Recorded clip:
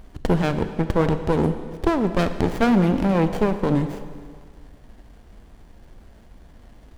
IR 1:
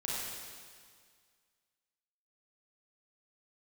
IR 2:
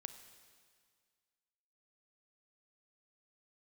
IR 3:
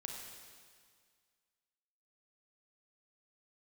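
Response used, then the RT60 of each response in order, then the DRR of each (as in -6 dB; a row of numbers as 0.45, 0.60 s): 2; 1.9, 1.9, 1.9 s; -6.5, 9.0, 0.5 dB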